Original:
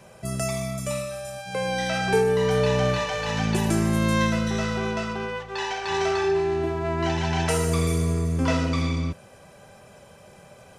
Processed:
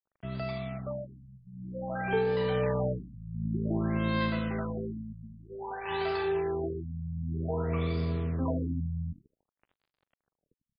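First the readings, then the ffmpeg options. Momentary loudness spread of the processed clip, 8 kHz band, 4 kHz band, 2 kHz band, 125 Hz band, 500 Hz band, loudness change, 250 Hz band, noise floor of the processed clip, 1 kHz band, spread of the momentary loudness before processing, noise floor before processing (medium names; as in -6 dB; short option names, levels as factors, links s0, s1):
13 LU, under -40 dB, -13.5 dB, -10.5 dB, -7.0 dB, -7.5 dB, -7.5 dB, -7.0 dB, under -85 dBFS, -9.5 dB, 9 LU, -50 dBFS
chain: -filter_complex "[0:a]asplit=5[s0][s1][s2][s3][s4];[s1]adelay=104,afreqshift=45,volume=0.106[s5];[s2]adelay=208,afreqshift=90,volume=0.0582[s6];[s3]adelay=312,afreqshift=135,volume=0.032[s7];[s4]adelay=416,afreqshift=180,volume=0.0176[s8];[s0][s5][s6][s7][s8]amix=inputs=5:normalize=0,acrusher=bits=5:mix=0:aa=0.5,afftfilt=real='re*lt(b*sr/1024,210*pow(5200/210,0.5+0.5*sin(2*PI*0.53*pts/sr)))':imag='im*lt(b*sr/1024,210*pow(5200/210,0.5+0.5*sin(2*PI*0.53*pts/sr)))':win_size=1024:overlap=0.75,volume=0.447"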